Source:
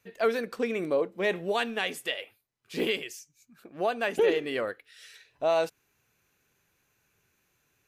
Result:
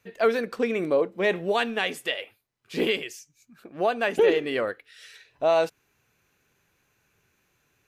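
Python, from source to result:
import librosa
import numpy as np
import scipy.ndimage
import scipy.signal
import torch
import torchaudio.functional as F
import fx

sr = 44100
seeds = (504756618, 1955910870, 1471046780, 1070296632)

y = fx.high_shelf(x, sr, hz=6100.0, db=-5.5)
y = y * 10.0 ** (4.0 / 20.0)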